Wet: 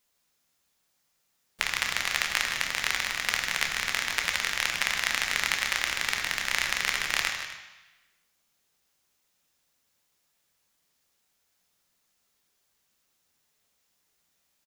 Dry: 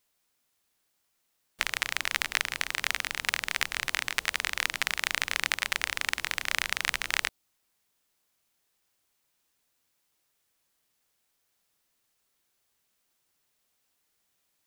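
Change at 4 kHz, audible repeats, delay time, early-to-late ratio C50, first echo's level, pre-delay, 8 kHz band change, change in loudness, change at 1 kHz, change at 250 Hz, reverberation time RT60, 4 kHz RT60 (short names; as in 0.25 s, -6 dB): +2.5 dB, 2, 0.156 s, 4.5 dB, -11.0 dB, 3 ms, +3.0 dB, +2.5 dB, +2.0 dB, +3.0 dB, 1.0 s, 1.1 s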